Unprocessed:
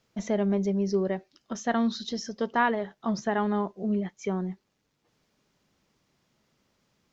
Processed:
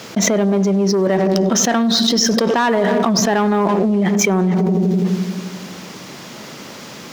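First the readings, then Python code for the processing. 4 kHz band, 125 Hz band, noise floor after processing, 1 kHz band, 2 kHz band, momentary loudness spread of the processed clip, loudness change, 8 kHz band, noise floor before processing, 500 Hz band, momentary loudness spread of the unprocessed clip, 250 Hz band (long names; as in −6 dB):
+21.0 dB, +15.5 dB, −35 dBFS, +10.5 dB, +11.5 dB, 19 LU, +13.0 dB, can't be measured, −76 dBFS, +13.0 dB, 8 LU, +13.5 dB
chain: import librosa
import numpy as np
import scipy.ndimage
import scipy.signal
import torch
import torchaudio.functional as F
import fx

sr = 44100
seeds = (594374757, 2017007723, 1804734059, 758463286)

p1 = fx.echo_feedback(x, sr, ms=99, feedback_pct=51, wet_db=-22.0)
p2 = fx.leveller(p1, sr, passes=2)
p3 = scipy.signal.sosfilt(scipy.signal.butter(2, 170.0, 'highpass', fs=sr, output='sos'), p2)
p4 = p3 + fx.echo_filtered(p3, sr, ms=83, feedback_pct=76, hz=810.0, wet_db=-16.5, dry=0)
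p5 = fx.env_flatten(p4, sr, amount_pct=100)
y = p5 * librosa.db_to_amplitude(2.0)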